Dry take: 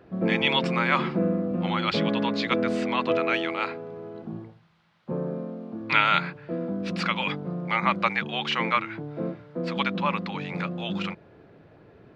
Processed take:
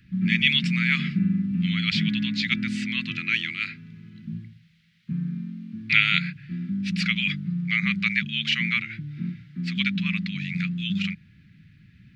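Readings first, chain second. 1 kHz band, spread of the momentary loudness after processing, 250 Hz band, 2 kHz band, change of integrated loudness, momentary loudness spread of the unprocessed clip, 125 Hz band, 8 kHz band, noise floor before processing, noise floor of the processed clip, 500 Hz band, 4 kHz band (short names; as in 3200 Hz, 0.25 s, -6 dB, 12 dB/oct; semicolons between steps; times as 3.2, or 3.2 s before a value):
-17.0 dB, 14 LU, +2.0 dB, +3.5 dB, +1.5 dB, 12 LU, +4.5 dB, n/a, -54 dBFS, -55 dBFS, under -25 dB, +4.0 dB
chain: Chebyshev band-stop 200–2000 Hz, order 3; gain +5 dB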